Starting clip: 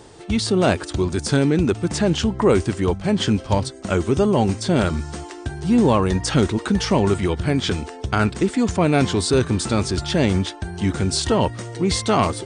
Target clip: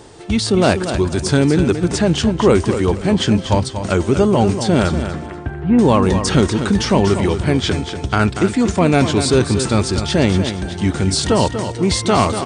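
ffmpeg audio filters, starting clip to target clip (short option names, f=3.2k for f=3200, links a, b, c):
-filter_complex "[0:a]asettb=1/sr,asplit=3[a][b][c];[a]atrim=end=5.024[d];[b]atrim=start=5.02:end=5.79,asetpts=PTS-STARTPTS,afade=t=in:d=0.004:c=qsin,afade=t=out:st=0.766:d=0.004:c=qsin,lowpass=f=2.3k:w=0.5412,lowpass=f=2.3k:w=1.3066[e];[c]atrim=start=5.786[f];[d][e]acrossfade=d=0.004:c1=hsin:c2=qsin[g];[g][f]acrossfade=d=0.004:c1=qsin:c2=hsin,aecho=1:1:239|478|717:0.355|0.0958|0.0259,volume=3.5dB"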